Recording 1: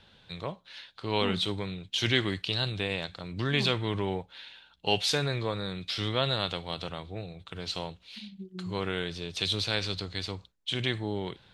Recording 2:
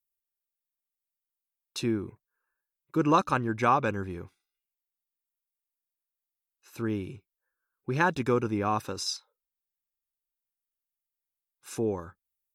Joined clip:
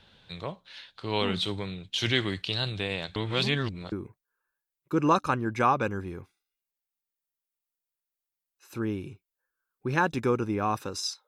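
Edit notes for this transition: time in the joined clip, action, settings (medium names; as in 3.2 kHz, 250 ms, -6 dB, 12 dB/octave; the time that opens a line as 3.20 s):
recording 1
3.16–3.92 s: reverse
3.92 s: go over to recording 2 from 1.95 s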